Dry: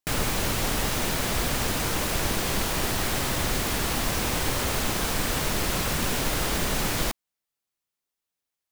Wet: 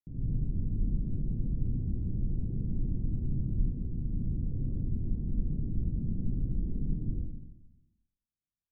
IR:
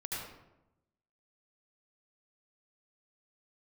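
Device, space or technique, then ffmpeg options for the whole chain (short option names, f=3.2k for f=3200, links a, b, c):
club heard from the street: -filter_complex "[0:a]asettb=1/sr,asplit=3[a][b][c];[a]atrim=end=3.554[d];[b]atrim=start=3.55:end=4.08,asetpts=PTS-STARTPTS,afade=t=in:d=0.004:c=qsin,afade=t=out:st=0.526:d=0.004:c=qsin,highshelf=f=9.1k:g=8.5[e];[c]atrim=start=4.076[f];[d][e]acrossfade=d=0.004:c1=hsin:c2=qsin[g];[g][f]acrossfade=d=0.004:c1=qsin:c2=hsin,alimiter=limit=-19.5dB:level=0:latency=1,lowpass=f=250:w=0.5412,lowpass=f=250:w=1.3066[h];[1:a]atrim=start_sample=2205[i];[h][i]afir=irnorm=-1:irlink=0,volume=-1.5dB"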